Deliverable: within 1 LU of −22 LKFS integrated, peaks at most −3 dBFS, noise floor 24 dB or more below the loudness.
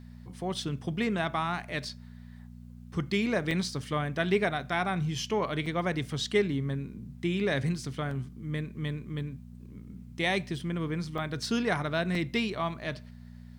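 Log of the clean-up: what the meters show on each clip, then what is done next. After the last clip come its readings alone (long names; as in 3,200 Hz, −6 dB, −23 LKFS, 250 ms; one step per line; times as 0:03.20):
number of dropouts 6; longest dropout 3.0 ms; mains hum 60 Hz; hum harmonics up to 240 Hz; level of the hum −44 dBFS; integrated loudness −31.0 LKFS; sample peak −13.0 dBFS; target loudness −22.0 LKFS
→ repair the gap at 0:01.89/0:03.51/0:05.66/0:08.11/0:11.18/0:12.15, 3 ms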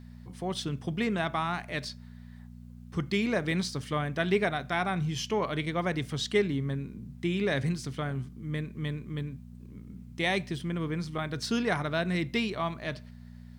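number of dropouts 0; mains hum 60 Hz; hum harmonics up to 240 Hz; level of the hum −44 dBFS
→ hum removal 60 Hz, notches 4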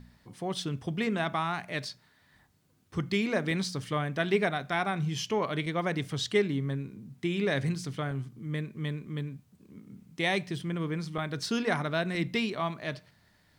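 mains hum none found; integrated loudness −31.5 LKFS; sample peak −13.5 dBFS; target loudness −22.0 LKFS
→ level +9.5 dB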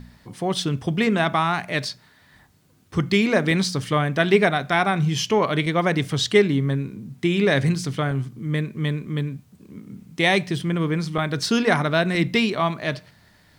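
integrated loudness −22.0 LKFS; sample peak −4.0 dBFS; background noise floor −56 dBFS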